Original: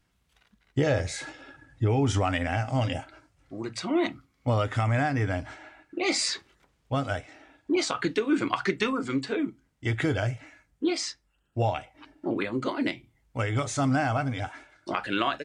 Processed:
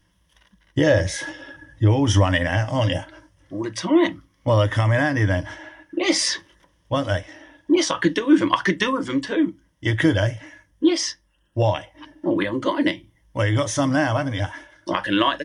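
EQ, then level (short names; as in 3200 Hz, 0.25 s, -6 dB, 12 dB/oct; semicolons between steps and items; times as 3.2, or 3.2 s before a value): ripple EQ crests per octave 1.2, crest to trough 11 dB; +5.5 dB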